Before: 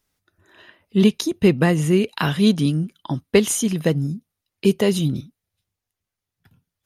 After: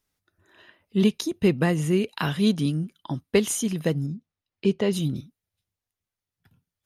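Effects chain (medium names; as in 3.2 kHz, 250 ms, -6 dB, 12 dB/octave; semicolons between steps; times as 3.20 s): 4.06–4.93 s: distance through air 110 m; trim -5 dB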